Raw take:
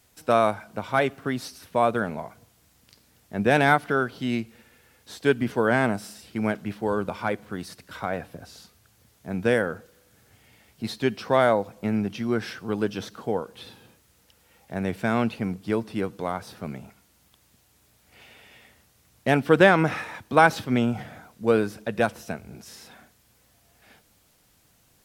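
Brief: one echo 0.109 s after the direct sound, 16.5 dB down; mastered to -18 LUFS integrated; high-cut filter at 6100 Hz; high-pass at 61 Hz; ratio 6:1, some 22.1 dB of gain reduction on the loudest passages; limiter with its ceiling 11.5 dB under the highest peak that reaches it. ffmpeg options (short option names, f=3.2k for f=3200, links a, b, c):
-af "highpass=61,lowpass=6.1k,acompressor=threshold=-36dB:ratio=6,alimiter=level_in=7.5dB:limit=-24dB:level=0:latency=1,volume=-7.5dB,aecho=1:1:109:0.15,volume=26dB"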